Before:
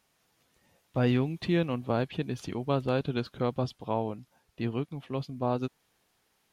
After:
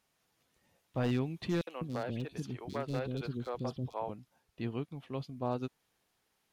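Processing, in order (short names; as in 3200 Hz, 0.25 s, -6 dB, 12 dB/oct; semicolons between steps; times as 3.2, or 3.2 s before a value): one-sided fold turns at -20.5 dBFS; 1.61–4.09 three bands offset in time highs, mids, lows 60/200 ms, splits 390/3300 Hz; gain -5.5 dB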